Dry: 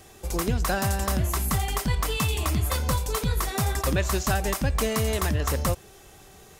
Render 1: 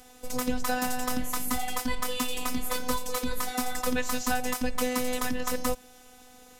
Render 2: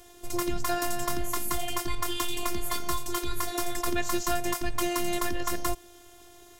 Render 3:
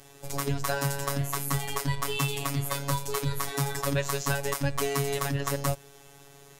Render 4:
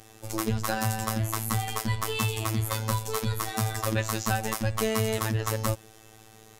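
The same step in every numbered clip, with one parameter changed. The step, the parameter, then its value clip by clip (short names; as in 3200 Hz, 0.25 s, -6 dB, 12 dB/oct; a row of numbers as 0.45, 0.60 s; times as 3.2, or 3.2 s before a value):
robotiser, frequency: 250, 350, 140, 110 Hz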